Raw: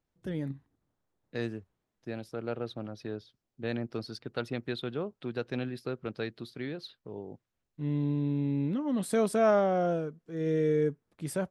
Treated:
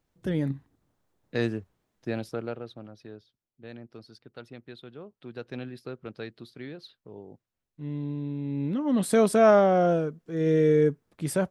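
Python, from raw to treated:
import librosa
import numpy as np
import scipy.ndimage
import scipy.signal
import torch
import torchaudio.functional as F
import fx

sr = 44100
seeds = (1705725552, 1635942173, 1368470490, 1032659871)

y = fx.gain(x, sr, db=fx.line((2.29, 7.0), (2.62, -3.5), (3.63, -10.0), (4.95, -10.0), (5.51, -3.0), (8.41, -3.0), (8.95, 6.0)))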